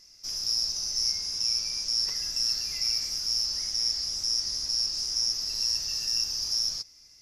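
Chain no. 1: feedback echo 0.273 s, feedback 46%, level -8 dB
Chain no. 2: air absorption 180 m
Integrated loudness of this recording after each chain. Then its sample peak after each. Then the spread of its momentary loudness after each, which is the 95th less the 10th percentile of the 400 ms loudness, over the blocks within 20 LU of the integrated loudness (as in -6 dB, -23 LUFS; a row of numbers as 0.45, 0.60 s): -25.5, -35.5 LUFS; -14.5, -24.5 dBFS; 1, 1 LU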